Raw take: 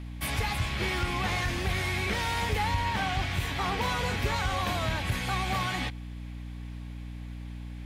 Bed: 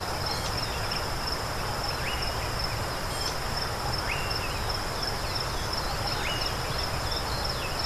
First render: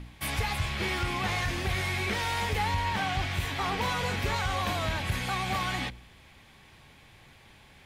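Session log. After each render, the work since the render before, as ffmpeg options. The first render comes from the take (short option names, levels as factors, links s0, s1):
-af "bandreject=f=60:t=h:w=4,bandreject=f=120:t=h:w=4,bandreject=f=180:t=h:w=4,bandreject=f=240:t=h:w=4,bandreject=f=300:t=h:w=4,bandreject=f=360:t=h:w=4,bandreject=f=420:t=h:w=4,bandreject=f=480:t=h:w=4,bandreject=f=540:t=h:w=4,bandreject=f=600:t=h:w=4"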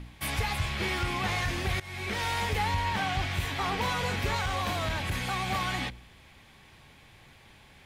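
-filter_complex "[0:a]asettb=1/sr,asplit=3[s0][s1][s2];[s0]atrim=end=4.414[s3];[s1]atrim=start=4.41:end=5.52,asetpts=PTS-STARTPTS,afade=t=in:d=0.004:c=qsin,afade=t=out:st=1.106:d=0.004:c=qsin,asoftclip=type=hard:threshold=0.0562[s4];[s2]atrim=start=5.516[s5];[s3][s4]acrossfade=d=0.004:c1=hsin:c2=qsin[s6];[s6][s5]acrossfade=d=0.004:c1=qsin:c2=hsin,asplit=2[s7][s8];[s7]atrim=end=1.8,asetpts=PTS-STARTPTS,afade=t=out:st=1.796:d=0.004:c=hsin:silence=0.112202[s9];[s8]atrim=start=1.8,asetpts=PTS-STARTPTS,afade=t=in:d=0.44:silence=0.112202[s10];[s9][s10]concat=n=2:v=0:a=1"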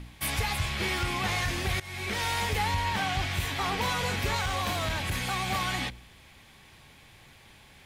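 -af "highshelf=f=4400:g=5.5"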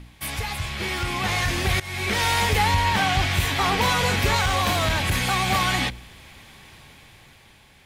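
-af "dynaudnorm=f=290:g=9:m=2.51"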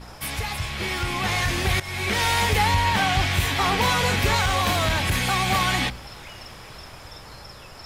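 -filter_complex "[1:a]volume=0.237[s0];[0:a][s0]amix=inputs=2:normalize=0"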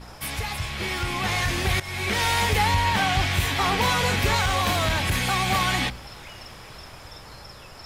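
-af "volume=0.891"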